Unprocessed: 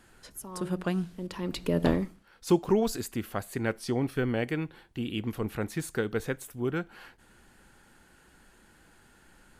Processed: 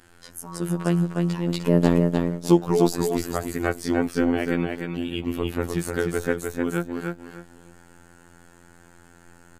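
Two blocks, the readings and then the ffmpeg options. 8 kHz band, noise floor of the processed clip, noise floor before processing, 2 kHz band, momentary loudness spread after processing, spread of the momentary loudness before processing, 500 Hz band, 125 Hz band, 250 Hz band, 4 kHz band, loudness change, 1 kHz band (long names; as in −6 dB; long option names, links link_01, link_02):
+6.0 dB, −52 dBFS, −60 dBFS, +5.5 dB, 12 LU, 11 LU, +6.5 dB, +7.5 dB, +7.5 dB, +4.5 dB, +7.0 dB, +6.5 dB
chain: -af "afftfilt=real='hypot(re,im)*cos(PI*b)':imag='0':win_size=2048:overlap=0.75,aecho=1:1:302|604|906:0.631|0.145|0.0334,volume=7.5dB"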